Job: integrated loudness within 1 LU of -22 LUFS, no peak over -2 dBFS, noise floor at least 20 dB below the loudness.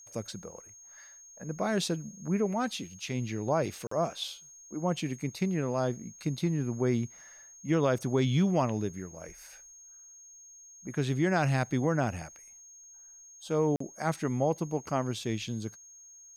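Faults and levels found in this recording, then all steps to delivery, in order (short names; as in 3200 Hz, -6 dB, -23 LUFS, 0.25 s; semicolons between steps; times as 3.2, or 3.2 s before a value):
dropouts 2; longest dropout 44 ms; steady tone 6500 Hz; tone level -50 dBFS; loudness -31.0 LUFS; peak -16.0 dBFS; loudness target -22.0 LUFS
-> interpolate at 3.87/13.76, 44 ms; notch 6500 Hz, Q 30; gain +9 dB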